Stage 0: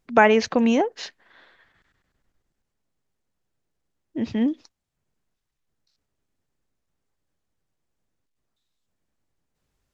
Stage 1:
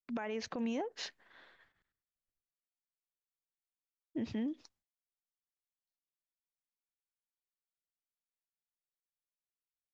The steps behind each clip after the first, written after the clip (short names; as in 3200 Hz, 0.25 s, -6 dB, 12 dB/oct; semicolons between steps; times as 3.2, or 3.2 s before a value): expander -55 dBFS; compressor 6:1, threshold -25 dBFS, peak gain reduction 14.5 dB; limiter -23 dBFS, peak gain reduction 9.5 dB; gain -6.5 dB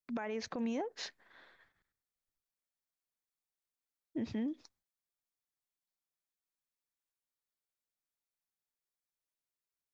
bell 2900 Hz -5.5 dB 0.24 oct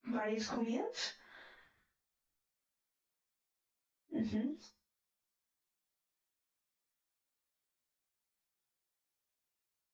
phase scrambler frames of 0.1 s; resonator 71 Hz, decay 0.39 s, harmonics odd, mix 50%; compressor, threshold -42 dBFS, peak gain reduction 7 dB; gain +8.5 dB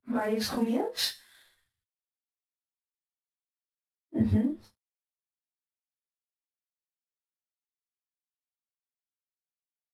CVSD 64 kbps; fifteen-band EQ 100 Hz +10 dB, 2500 Hz -5 dB, 6300 Hz -10 dB; three-band expander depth 100%; gain +8 dB